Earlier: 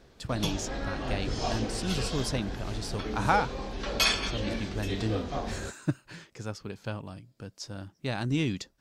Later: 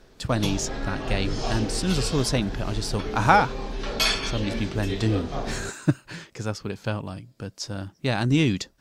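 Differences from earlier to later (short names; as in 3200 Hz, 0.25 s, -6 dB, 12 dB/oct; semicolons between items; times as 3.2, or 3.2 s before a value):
speech +7.5 dB; reverb: on, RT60 0.30 s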